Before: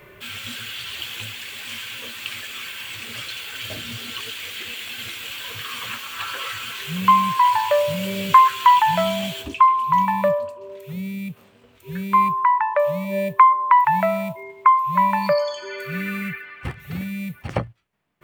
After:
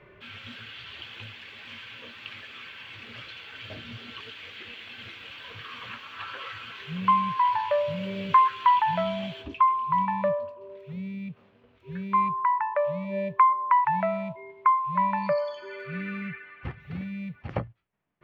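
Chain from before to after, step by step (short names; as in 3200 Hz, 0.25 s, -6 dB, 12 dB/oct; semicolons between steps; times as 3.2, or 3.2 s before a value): air absorption 260 m; gain -5.5 dB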